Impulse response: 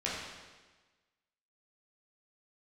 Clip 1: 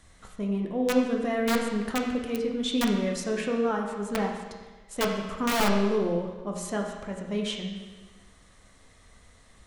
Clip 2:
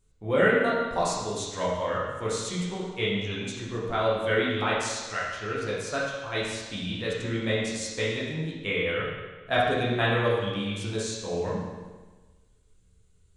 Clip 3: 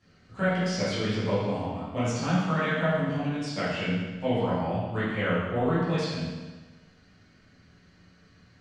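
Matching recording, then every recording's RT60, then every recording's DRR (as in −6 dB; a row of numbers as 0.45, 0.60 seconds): 2; 1.3, 1.3, 1.3 seconds; 0.5, −7.5, −13.5 decibels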